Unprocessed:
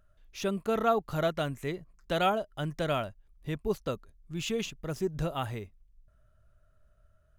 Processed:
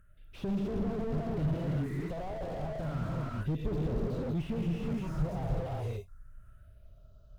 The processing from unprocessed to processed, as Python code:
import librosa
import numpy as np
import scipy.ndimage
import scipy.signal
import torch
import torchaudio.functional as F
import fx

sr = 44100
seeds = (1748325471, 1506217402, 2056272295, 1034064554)

y = fx.cheby_harmonics(x, sr, harmonics=(5,), levels_db=(-11,), full_scale_db=-14.5)
y = fx.phaser_stages(y, sr, stages=4, low_hz=260.0, high_hz=2000.0, hz=0.32, feedback_pct=25)
y = fx.rev_gated(y, sr, seeds[0], gate_ms=400, shape='rising', drr_db=-3.0)
y = fx.slew_limit(y, sr, full_power_hz=11.0)
y = F.gain(torch.from_numpy(y), -3.0).numpy()